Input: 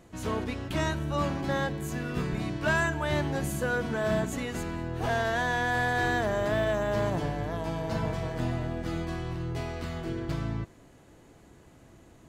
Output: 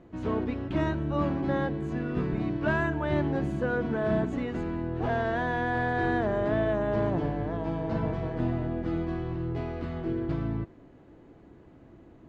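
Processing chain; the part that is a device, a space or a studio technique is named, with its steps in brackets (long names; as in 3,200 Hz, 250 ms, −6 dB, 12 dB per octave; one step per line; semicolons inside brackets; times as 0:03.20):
phone in a pocket (low-pass filter 3,800 Hz 12 dB per octave; parametric band 310 Hz +5.5 dB 0.95 octaves; high-shelf EQ 2,100 Hz −9 dB)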